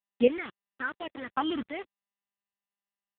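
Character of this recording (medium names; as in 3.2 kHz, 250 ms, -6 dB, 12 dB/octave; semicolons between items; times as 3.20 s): phasing stages 6, 1.2 Hz, lowest notch 500–1300 Hz; chopped level 0.73 Hz, depth 65%, duty 20%; a quantiser's noise floor 8-bit, dither none; AMR-NB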